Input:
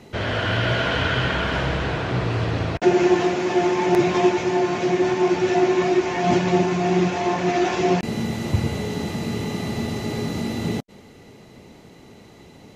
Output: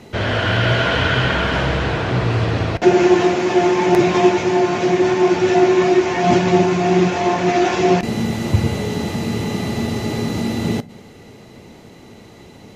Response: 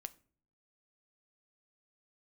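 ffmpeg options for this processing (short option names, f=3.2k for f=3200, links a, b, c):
-filter_complex "[0:a]asplit=2[a][b];[1:a]atrim=start_sample=2205,asetrate=32634,aresample=44100[c];[b][c]afir=irnorm=-1:irlink=0,volume=7.5dB[d];[a][d]amix=inputs=2:normalize=0,volume=-4dB"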